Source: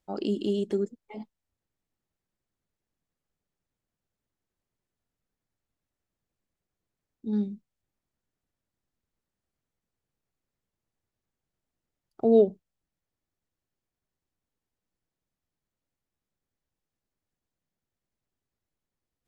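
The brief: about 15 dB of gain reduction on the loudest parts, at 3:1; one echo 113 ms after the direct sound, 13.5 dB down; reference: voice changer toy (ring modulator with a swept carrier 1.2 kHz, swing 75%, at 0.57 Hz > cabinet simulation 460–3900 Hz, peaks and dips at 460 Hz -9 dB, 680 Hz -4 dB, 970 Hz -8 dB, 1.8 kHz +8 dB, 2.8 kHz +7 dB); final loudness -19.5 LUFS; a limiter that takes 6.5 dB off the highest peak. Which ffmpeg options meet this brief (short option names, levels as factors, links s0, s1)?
-af "acompressor=threshold=0.0178:ratio=3,alimiter=level_in=1.58:limit=0.0631:level=0:latency=1,volume=0.631,aecho=1:1:113:0.211,aeval=exprs='val(0)*sin(2*PI*1200*n/s+1200*0.75/0.57*sin(2*PI*0.57*n/s))':c=same,highpass=460,equalizer=f=460:t=q:w=4:g=-9,equalizer=f=680:t=q:w=4:g=-4,equalizer=f=970:t=q:w=4:g=-8,equalizer=f=1800:t=q:w=4:g=8,equalizer=f=2800:t=q:w=4:g=7,lowpass=f=3900:w=0.5412,lowpass=f=3900:w=1.3066,volume=7.5"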